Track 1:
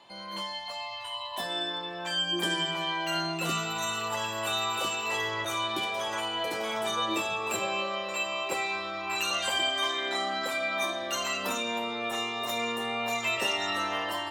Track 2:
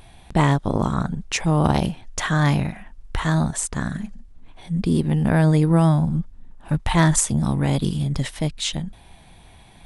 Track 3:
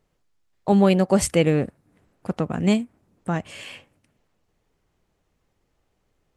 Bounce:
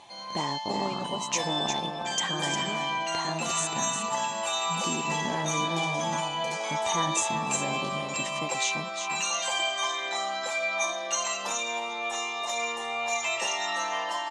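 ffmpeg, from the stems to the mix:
ffmpeg -i stem1.wav -i stem2.wav -i stem3.wav -filter_complex "[0:a]equalizer=frequency=310:width_type=o:width=1.2:gain=-9,aecho=1:1:5.9:0.37,volume=0.5dB,asplit=2[link_01][link_02];[link_02]volume=-21.5dB[link_03];[1:a]acompressor=threshold=-24dB:ratio=2.5,volume=-5.5dB,asplit=2[link_04][link_05];[link_05]volume=-6.5dB[link_06];[2:a]volume=-17dB[link_07];[link_03][link_06]amix=inputs=2:normalize=0,aecho=0:1:356:1[link_08];[link_01][link_04][link_07][link_08]amix=inputs=4:normalize=0,highpass=240,equalizer=frequency=860:width_type=q:width=4:gain=6,equalizer=frequency=1400:width_type=q:width=4:gain=-6,equalizer=frequency=6400:width_type=q:width=4:gain=10,lowpass=frequency=8800:width=0.5412,lowpass=frequency=8800:width=1.3066" out.wav

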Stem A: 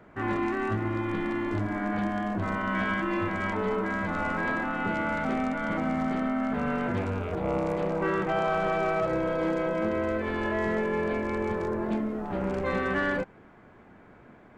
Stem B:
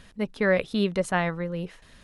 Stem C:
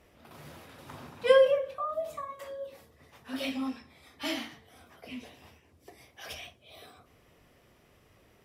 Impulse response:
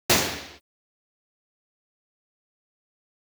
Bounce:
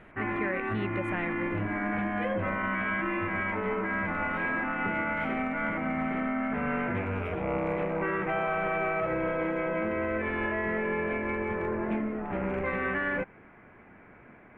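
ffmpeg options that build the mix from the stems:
-filter_complex "[0:a]volume=-1.5dB[link_01];[1:a]volume=-8.5dB[link_02];[2:a]adelay=950,volume=-12dB[link_03];[link_01][link_02][link_03]amix=inputs=3:normalize=0,highshelf=frequency=3400:width_type=q:width=3:gain=-13.5,alimiter=limit=-21dB:level=0:latency=1:release=131"

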